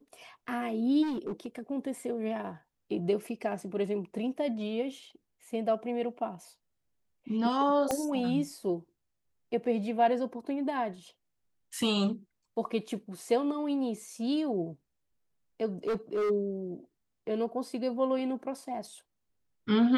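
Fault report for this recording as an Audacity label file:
1.020000	1.590000	clipping −30 dBFS
7.910000	7.910000	click −15 dBFS
15.870000	16.310000	clipping −26.5 dBFS

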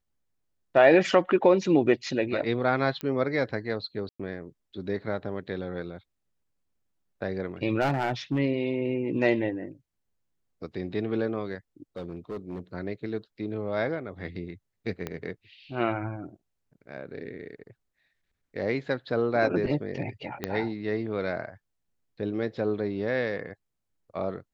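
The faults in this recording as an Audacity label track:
3.010000	3.010000	click −19 dBFS
4.090000	4.200000	drop-out 105 ms
7.800000	8.390000	clipping −20.5 dBFS
11.960000	12.600000	clipping −30.5 dBFS
15.070000	15.070000	click −18 dBFS
20.440000	20.440000	click −15 dBFS

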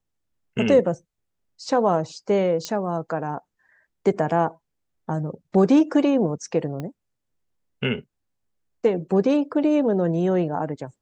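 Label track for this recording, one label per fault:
2.650000	2.650000	click −14 dBFS
6.800000	6.800000	click −19 dBFS

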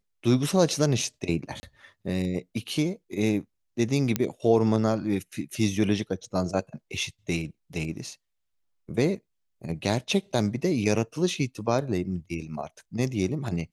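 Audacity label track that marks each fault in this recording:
1.600000	1.630000	drop-out 30 ms
4.160000	4.160000	click −9 dBFS

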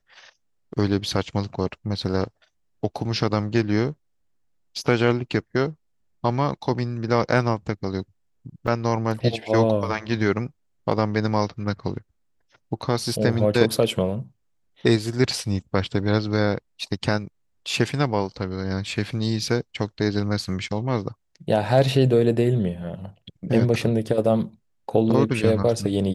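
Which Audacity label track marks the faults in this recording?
8.670000	8.680000	drop-out 5.1 ms

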